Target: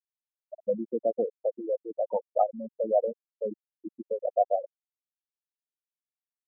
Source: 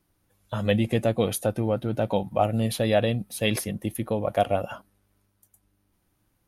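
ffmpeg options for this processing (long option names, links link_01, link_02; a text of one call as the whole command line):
ffmpeg -i in.wav -filter_complex "[0:a]acrossover=split=240 2100:gain=0.0794 1 0.0891[link_01][link_02][link_03];[link_01][link_02][link_03]amix=inputs=3:normalize=0,afftfilt=real='re*gte(hypot(re,im),0.2)':imag='im*gte(hypot(re,im),0.2)':win_size=1024:overlap=0.75,equalizer=frequency=930:width_type=o:width=2:gain=3.5,volume=-3.5dB" out.wav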